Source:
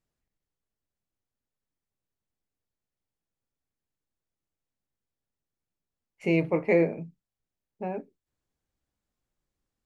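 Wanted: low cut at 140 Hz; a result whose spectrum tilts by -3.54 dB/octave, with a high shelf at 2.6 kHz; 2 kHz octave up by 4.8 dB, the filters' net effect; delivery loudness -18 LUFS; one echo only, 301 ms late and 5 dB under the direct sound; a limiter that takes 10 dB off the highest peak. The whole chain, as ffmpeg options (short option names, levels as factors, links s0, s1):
-af "highpass=140,equalizer=f=2000:t=o:g=3.5,highshelf=f=2600:g=4,alimiter=limit=0.112:level=0:latency=1,aecho=1:1:301:0.562,volume=5.31"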